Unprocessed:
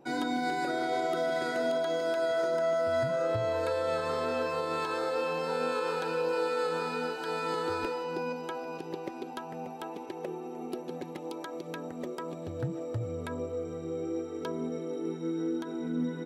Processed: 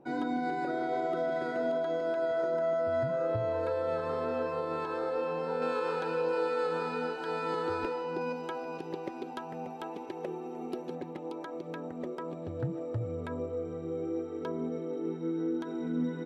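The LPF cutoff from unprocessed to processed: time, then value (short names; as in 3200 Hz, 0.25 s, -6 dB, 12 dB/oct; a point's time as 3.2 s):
LPF 6 dB/oct
1100 Hz
from 5.62 s 2400 Hz
from 8.21 s 4300 Hz
from 10.95 s 1800 Hz
from 15.61 s 3500 Hz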